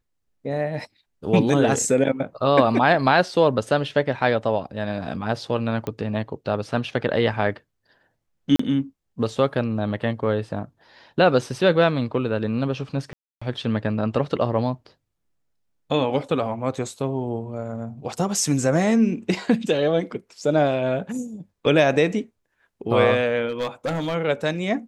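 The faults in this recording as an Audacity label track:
5.870000	5.870000	pop -16 dBFS
8.560000	8.590000	dropout 34 ms
13.130000	13.410000	dropout 285 ms
23.480000	24.150000	clipped -21 dBFS

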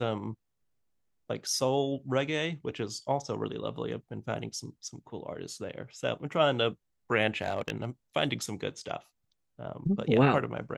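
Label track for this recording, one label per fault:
7.420000	7.850000	clipped -22.5 dBFS

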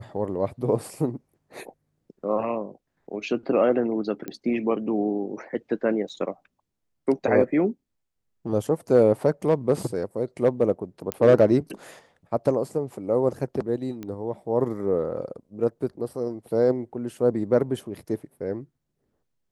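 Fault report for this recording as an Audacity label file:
4.280000	4.280000	pop -19 dBFS
6.090000	6.100000	dropout 5.7 ms
11.120000	11.120000	pop -11 dBFS
14.030000	14.030000	pop -22 dBFS

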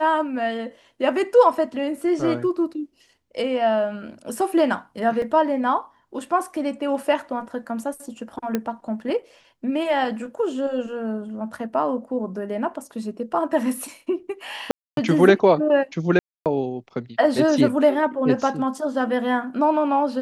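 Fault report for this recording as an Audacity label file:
5.220000	5.220000	dropout 2.8 ms
8.550000	8.550000	pop -10 dBFS
14.710000	14.970000	dropout 262 ms
16.190000	16.460000	dropout 268 ms

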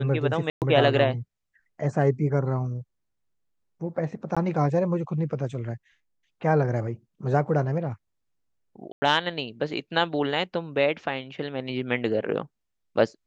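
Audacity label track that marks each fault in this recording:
0.500000	0.620000	dropout 118 ms
4.350000	4.370000	dropout 16 ms
8.920000	9.020000	dropout 100 ms

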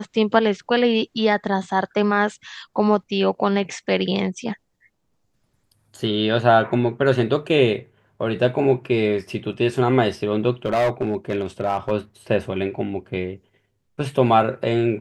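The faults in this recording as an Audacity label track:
10.650000	11.920000	clipped -15.5 dBFS

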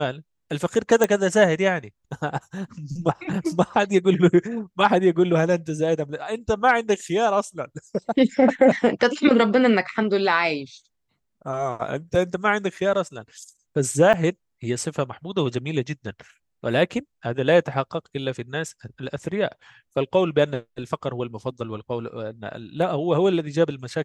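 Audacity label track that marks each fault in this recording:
1.040000	1.040000	pop -6 dBFS
14.130000	14.140000	dropout 7.5 ms

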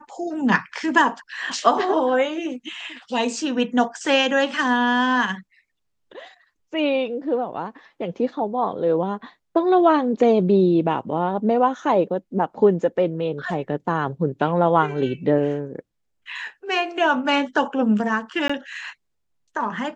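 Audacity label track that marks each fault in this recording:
18.480000	18.500000	dropout 15 ms

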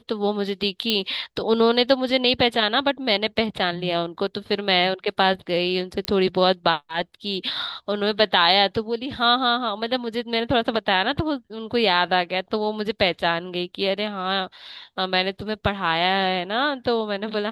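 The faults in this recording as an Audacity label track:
0.900000	0.900000	pop -7 dBFS
6.050000	6.050000	pop -10 dBFS

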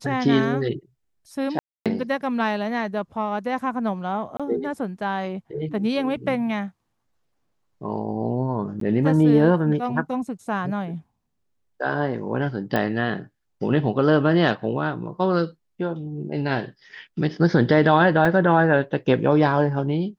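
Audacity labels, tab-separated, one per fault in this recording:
1.590000	1.860000	dropout 267 ms
4.370000	4.400000	dropout 26 ms
8.800000	8.810000	dropout 13 ms
12.760000	12.760000	pop -11 dBFS
18.250000	18.250000	dropout 2.2 ms

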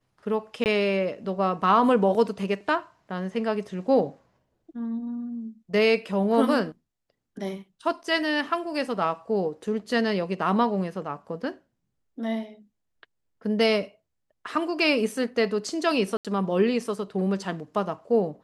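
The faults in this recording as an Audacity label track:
0.640000	0.660000	dropout 19 ms
16.170000	16.250000	dropout 77 ms

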